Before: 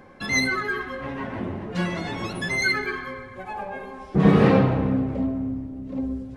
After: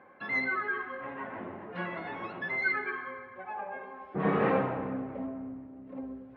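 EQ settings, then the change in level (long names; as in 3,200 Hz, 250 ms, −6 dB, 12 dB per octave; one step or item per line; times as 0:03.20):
high-pass filter 980 Hz 6 dB per octave
low-pass filter 2,100 Hz 12 dB per octave
high-frequency loss of the air 290 metres
0.0 dB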